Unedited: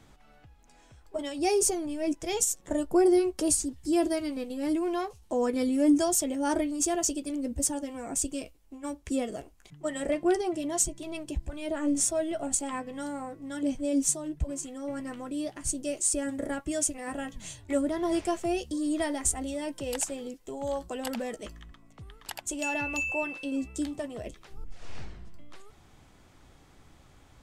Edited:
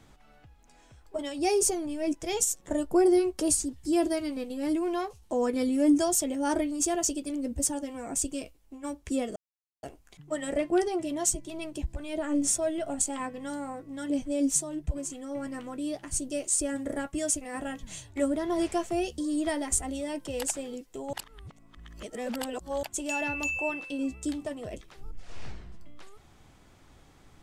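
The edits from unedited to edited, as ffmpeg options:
-filter_complex "[0:a]asplit=4[a][b][c][d];[a]atrim=end=9.36,asetpts=PTS-STARTPTS,afade=t=out:st=9.356:d=0.004:c=hsin,apad=pad_dur=0.47[e];[b]atrim=start=9.36:end=20.662,asetpts=PTS-STARTPTS,afade=t=in:d=0.004:c=hsin[f];[c]atrim=start=20.658:end=22.362,asetpts=PTS-STARTPTS,areverse[g];[d]atrim=start=22.358[h];[e][f]concat=n=2:v=0:a=1[i];[i][g]acrossfade=d=0.004:c1=hsin:c2=hsin[j];[j][h]acrossfade=d=0.004:c1=hsin:c2=hsin"

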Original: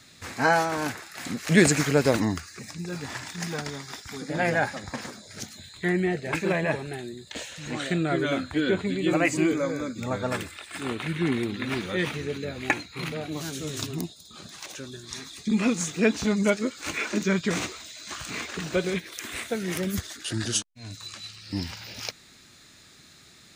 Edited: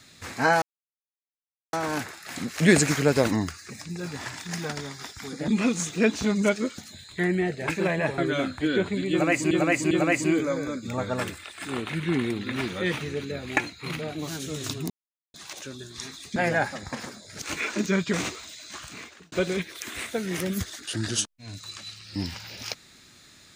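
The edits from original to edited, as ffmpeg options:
-filter_complex "[0:a]asplit=12[a][b][c][d][e][f][g][h][i][j][k][l];[a]atrim=end=0.62,asetpts=PTS-STARTPTS,afade=t=out:st=0.616:d=0.004:c=hsin,apad=pad_dur=1.11[m];[b]atrim=start=0.62:end=4.372,asetpts=PTS-STARTPTS,afade=t=in:d=0.004:c=hsin[n];[c]atrim=start=15.488:end=16.792[o];[d]atrim=start=5.428:end=6.832[p];[e]atrim=start=8.108:end=9.442[q];[f]atrim=start=9.038:end=9.442[r];[g]atrim=start=9.038:end=14.03,asetpts=PTS-STARTPTS,afade=t=out:st=4.988:d=0.004:c=hsin[s];[h]atrim=start=14.03:end=14.47,asetpts=PTS-STARTPTS,volume=0[t];[i]atrim=start=14.47:end=15.492,asetpts=PTS-STARTPTS,afade=t=in:d=0.004:c=hsin[u];[j]atrim=start=4.368:end=5.432[v];[k]atrim=start=16.788:end=18.69,asetpts=PTS-STARTPTS,afade=t=out:st=1.112:d=0.79[w];[l]atrim=start=18.69,asetpts=PTS-STARTPTS,afade=t=in:d=0.004:c=hsin[x];[m][n]concat=n=2:v=0:a=1[y];[y][o]acrossfade=d=0.004:c1=hsin:c2=hsin[z];[z][p]acrossfade=d=0.004:c1=hsin:c2=hsin[aa];[aa][q]acrossfade=d=0.004:c1=hsin:c2=hsin[ab];[ab][r]acrossfade=d=0.004:c1=hsin:c2=hsin[ac];[s][t][u]concat=n=3:v=0:a=1[ad];[ac][ad]acrossfade=d=0.004:c1=hsin:c2=hsin[ae];[ae][v]acrossfade=d=0.004:c1=hsin:c2=hsin[af];[w][x]concat=n=2:v=0:a=1[ag];[af][ag]acrossfade=d=0.004:c1=hsin:c2=hsin"

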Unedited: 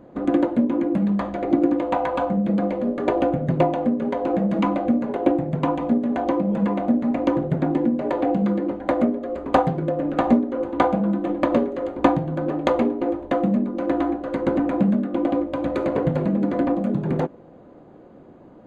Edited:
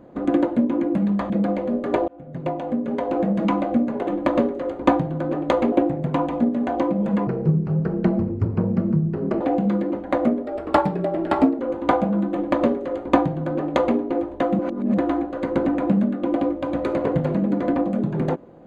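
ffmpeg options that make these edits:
-filter_complex "[0:a]asplit=11[a][b][c][d][e][f][g][h][i][j][k];[a]atrim=end=1.302[l];[b]atrim=start=2.438:end=3.22,asetpts=PTS-STARTPTS,afade=t=out:st=0.778:d=0.004:c=hsin[m];[c]atrim=start=3.22:end=5.212,asetpts=PTS-STARTPTS,afade=t=in:d=0.94[n];[d]atrim=start=11.238:end=12.892[o];[e]atrim=start=5.208:end=6.764[p];[f]atrim=start=6.76:end=8.17,asetpts=PTS-STARTPTS,asetrate=29106,aresample=44100[q];[g]atrim=start=8.166:end=9.234[r];[h]atrim=start=9.23:end=10.5,asetpts=PTS-STARTPTS,asetrate=49833,aresample=44100[s];[i]atrim=start=10.496:end=13.502[t];[j]atrim=start=13.498:end=13.892,asetpts=PTS-STARTPTS,areverse[u];[k]atrim=start=13.888[v];[m][n]concat=n=2:v=0:a=1[w];[l][w]acrossfade=d=0.004:c1=hsin:c2=hsin[x];[x][o]acrossfade=d=0.004:c1=hsin:c2=hsin[y];[y][p]acrossfade=d=0.004:c1=hsin:c2=hsin[z];[z][q]acrossfade=d=0.004:c1=hsin:c2=hsin[aa];[aa][r]acrossfade=d=0.004:c1=hsin:c2=hsin[ab];[ab][s]acrossfade=d=0.004:c1=hsin:c2=hsin[ac];[ac][t]acrossfade=d=0.004:c1=hsin:c2=hsin[ad];[ad][u]acrossfade=d=0.004:c1=hsin:c2=hsin[ae];[ae][v]acrossfade=d=0.004:c1=hsin:c2=hsin"

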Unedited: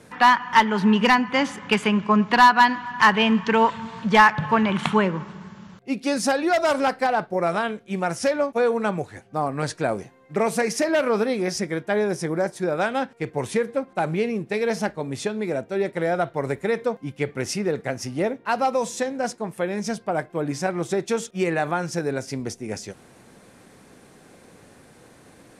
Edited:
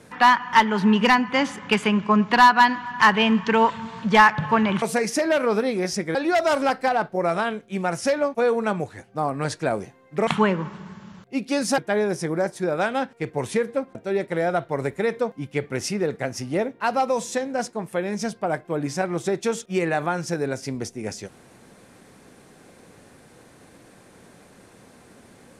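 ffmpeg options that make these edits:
-filter_complex "[0:a]asplit=6[a][b][c][d][e][f];[a]atrim=end=4.822[g];[b]atrim=start=10.448:end=11.782[h];[c]atrim=start=6.328:end=10.452[i];[d]atrim=start=4.818:end=6.332[j];[e]atrim=start=11.778:end=13.952[k];[f]atrim=start=15.598[l];[g][h]acrossfade=d=0.004:c1=hsin:c2=hsin[m];[m][i]acrossfade=d=0.004:c1=hsin:c2=hsin[n];[n][j]acrossfade=d=0.004:c1=hsin:c2=hsin[o];[o][k]acrossfade=d=0.004:c1=hsin:c2=hsin[p];[p][l]acrossfade=d=0.004:c1=hsin:c2=hsin"

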